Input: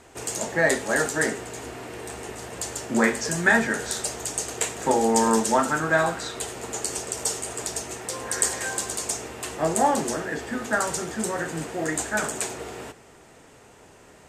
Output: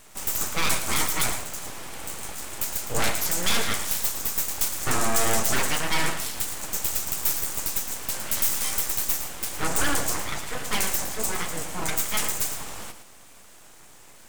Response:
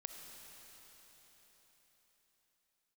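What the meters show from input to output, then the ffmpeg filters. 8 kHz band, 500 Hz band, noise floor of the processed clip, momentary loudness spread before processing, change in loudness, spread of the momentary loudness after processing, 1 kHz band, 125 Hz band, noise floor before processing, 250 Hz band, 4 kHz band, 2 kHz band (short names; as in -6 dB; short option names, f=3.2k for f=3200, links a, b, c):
+1.0 dB, -9.0 dB, -48 dBFS, 14 LU, -0.5 dB, 10 LU, -5.0 dB, -1.0 dB, -51 dBFS, -8.5 dB, +5.0 dB, -5.0 dB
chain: -filter_complex "[0:a]aeval=exprs='abs(val(0))':c=same,crystalizer=i=1.5:c=0,volume=16dB,asoftclip=hard,volume=-16dB,asplit=2[a][b];[1:a]atrim=start_sample=2205,atrim=end_sample=3969,adelay=112[c];[b][c]afir=irnorm=-1:irlink=0,volume=-5dB[d];[a][d]amix=inputs=2:normalize=0"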